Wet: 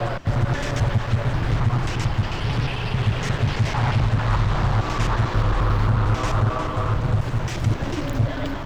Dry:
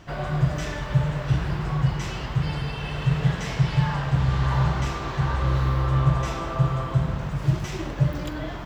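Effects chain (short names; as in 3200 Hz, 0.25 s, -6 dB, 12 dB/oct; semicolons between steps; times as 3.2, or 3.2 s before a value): slices in reverse order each 89 ms, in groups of 3; limiter -16 dBFS, peak gain reduction 7.5 dB; frequency shift -25 Hz; Doppler distortion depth 0.62 ms; gain +5 dB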